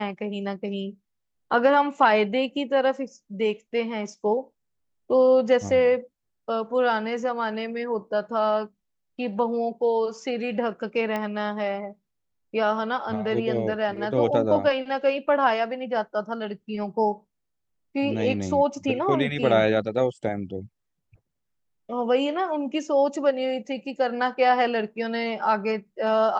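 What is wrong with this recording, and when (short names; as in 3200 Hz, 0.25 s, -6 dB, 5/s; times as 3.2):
11.16 pop -16 dBFS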